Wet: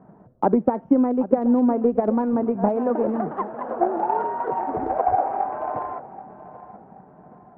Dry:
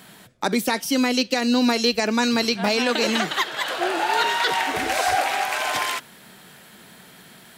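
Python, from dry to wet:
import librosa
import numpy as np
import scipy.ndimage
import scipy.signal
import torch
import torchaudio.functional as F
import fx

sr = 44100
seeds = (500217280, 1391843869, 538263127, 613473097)

y = scipy.signal.sosfilt(scipy.signal.cheby2(4, 70, 4100.0, 'lowpass', fs=sr, output='sos'), x)
y = fx.transient(y, sr, attack_db=8, sustain_db=3)
y = fx.echo_feedback(y, sr, ms=779, feedback_pct=37, wet_db=-16.0)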